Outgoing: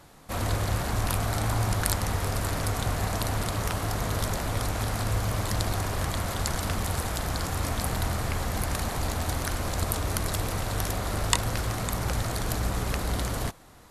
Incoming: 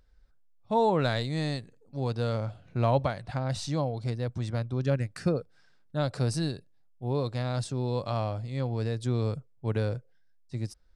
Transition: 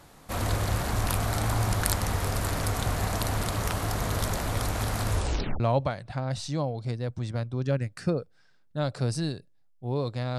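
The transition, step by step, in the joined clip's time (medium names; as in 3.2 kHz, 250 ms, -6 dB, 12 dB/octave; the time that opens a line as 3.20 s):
outgoing
5.11 s: tape stop 0.49 s
5.60 s: go over to incoming from 2.79 s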